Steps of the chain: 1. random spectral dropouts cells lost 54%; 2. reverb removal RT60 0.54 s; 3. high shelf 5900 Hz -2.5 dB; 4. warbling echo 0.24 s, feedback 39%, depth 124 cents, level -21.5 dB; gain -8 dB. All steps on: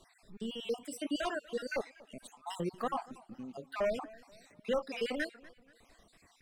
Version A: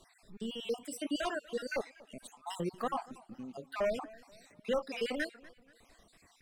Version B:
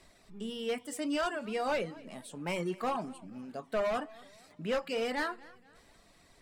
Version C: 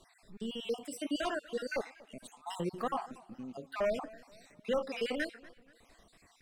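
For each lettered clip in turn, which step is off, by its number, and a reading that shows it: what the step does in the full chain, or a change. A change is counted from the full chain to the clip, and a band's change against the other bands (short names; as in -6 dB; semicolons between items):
3, 8 kHz band +1.5 dB; 1, crest factor change -3.5 dB; 2, momentary loudness spread change -2 LU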